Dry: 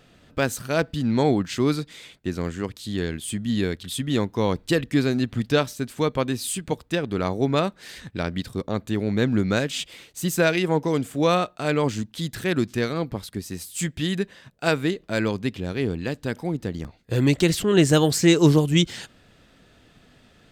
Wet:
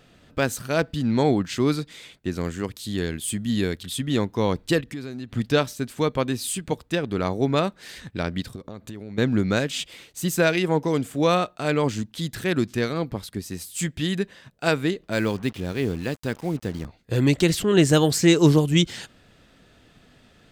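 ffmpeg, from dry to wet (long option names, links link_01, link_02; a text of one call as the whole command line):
ffmpeg -i in.wav -filter_complex "[0:a]asettb=1/sr,asplit=3[link_01][link_02][link_03];[link_01]atrim=end=2.364[link_04];[link_02]atrim=start=2.36:end=3.86,asetpts=PTS-STARTPTS,afade=type=in:duration=0.004:curve=qsin,afade=type=out:start_time=1.496:duration=0.004:curve=qsin,highshelf=frequency=8600:gain=8[link_05];[link_03]atrim=start=3.856[link_06];[link_04][link_05]acrossfade=duration=0.004:curve1=hsin:curve2=qsin[link_07];[link_07][link_06]acrossfade=duration=0.004:curve1=qsin:curve2=hsin,asplit=3[link_08][link_09][link_10];[link_08]afade=type=out:start_time=4.8:duration=0.02[link_11];[link_09]acompressor=threshold=-34dB:ratio=3:attack=3.2:release=140:knee=1:detection=peak,afade=type=in:start_time=4.8:duration=0.02,afade=type=out:start_time=5.32:duration=0.02[link_12];[link_10]afade=type=in:start_time=5.32:duration=0.02[link_13];[link_11][link_12][link_13]amix=inputs=3:normalize=0,asettb=1/sr,asplit=3[link_14][link_15][link_16];[link_14]atrim=end=8.554[link_17];[link_15]atrim=start=8.55:end=9.18,asetpts=PTS-STARTPTS,afade=type=in:duration=0.004:curve=qsin,afade=type=out:start_time=0.626:duration=0.004:curve=qsin,acompressor=threshold=-32dB:ratio=16:attack=3.2:release=140:knee=1:detection=peak[link_18];[link_16]atrim=start=9.176[link_19];[link_17][link_18]acrossfade=duration=0.004:curve1=hsin:curve2=qsin[link_20];[link_20][link_19]acrossfade=duration=0.004:curve1=qsin:curve2=hsin,asettb=1/sr,asplit=3[link_21][link_22][link_23];[link_21]atrim=end=15.124[link_24];[link_22]atrim=start=15.12:end=16.84,asetpts=PTS-STARTPTS,afade=type=in:duration=0.004:curve=qsin,afade=type=out:start_time=1.716:duration=0.004:curve=qsin,acrusher=bits=6:mix=0:aa=0.5[link_25];[link_23]atrim=start=16.836[link_26];[link_24][link_25]acrossfade=duration=0.004:curve1=hsin:curve2=qsin[link_27];[link_27][link_26]acrossfade=duration=0.004:curve1=qsin:curve2=hsin" out.wav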